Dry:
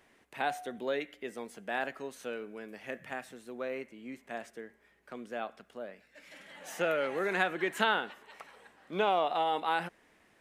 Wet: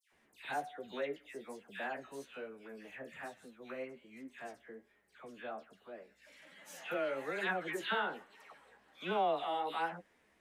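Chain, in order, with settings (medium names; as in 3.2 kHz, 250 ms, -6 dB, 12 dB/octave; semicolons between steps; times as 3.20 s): phase dispersion lows, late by 124 ms, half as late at 1.9 kHz; flange 1.2 Hz, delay 9.5 ms, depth 7 ms, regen +29%; trim -2.5 dB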